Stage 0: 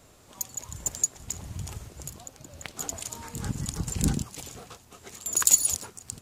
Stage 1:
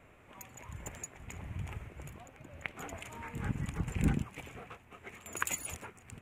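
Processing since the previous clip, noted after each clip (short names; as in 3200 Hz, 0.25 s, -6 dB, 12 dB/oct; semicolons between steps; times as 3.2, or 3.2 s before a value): resonant high shelf 3300 Hz -12.5 dB, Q 3; gain -3.5 dB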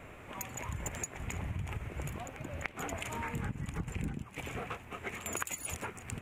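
compressor 12:1, threshold -43 dBFS, peak gain reduction 20.5 dB; gain +9.5 dB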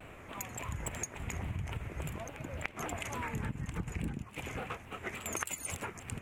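shaped vibrato saw down 3.5 Hz, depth 160 cents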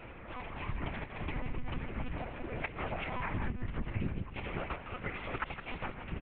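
air absorption 130 m; echo 0.16 s -10 dB; monotone LPC vocoder at 8 kHz 250 Hz; gain +2.5 dB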